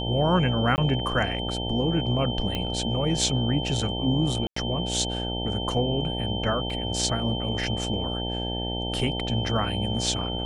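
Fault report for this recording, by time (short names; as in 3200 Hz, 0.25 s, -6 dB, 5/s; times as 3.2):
buzz 60 Hz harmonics 15 -31 dBFS
tone 3100 Hz -32 dBFS
0.76–0.78 gap 19 ms
2.55 pop -15 dBFS
4.47–4.56 gap 94 ms
6.7 gap 2.1 ms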